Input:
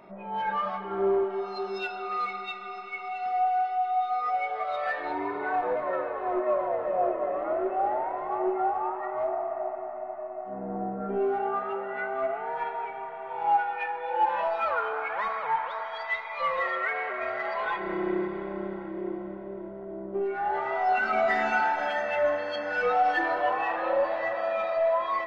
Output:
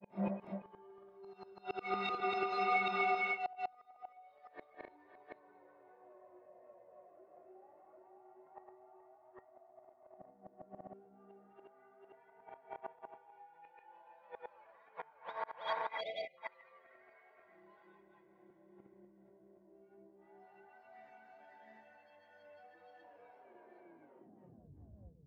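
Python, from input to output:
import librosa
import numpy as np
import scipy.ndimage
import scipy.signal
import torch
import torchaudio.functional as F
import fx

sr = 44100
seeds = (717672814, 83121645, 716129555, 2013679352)

y = fx.tape_stop_end(x, sr, length_s=1.85)
y = fx.recorder_agc(y, sr, target_db=-23.5, rise_db_per_s=34.0, max_gain_db=30)
y = scipy.signal.sosfilt(scipy.signal.butter(4, 72.0, 'highpass', fs=sr, output='sos'), y)
y = fx.low_shelf(y, sr, hz=370.0, db=6.5)
y = fx.notch(y, sr, hz=1300.0, q=6.8)
y = fx.gate_flip(y, sr, shuts_db=-22.0, range_db=-35)
y = fx.granulator(y, sr, seeds[0], grain_ms=259.0, per_s=29.0, spray_ms=481.0, spread_st=0)
y = fx.spec_erase(y, sr, start_s=16.01, length_s=0.37, low_hz=790.0, high_hz=2000.0)
y = F.gain(torch.from_numpy(y), 7.0).numpy()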